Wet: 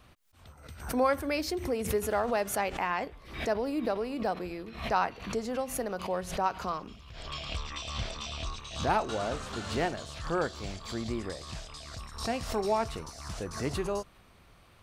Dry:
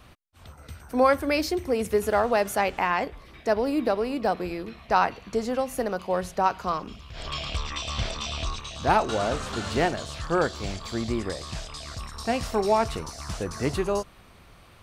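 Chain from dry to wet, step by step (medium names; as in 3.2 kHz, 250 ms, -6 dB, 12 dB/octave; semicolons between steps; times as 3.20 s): swell ahead of each attack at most 100 dB/s; trim -6.5 dB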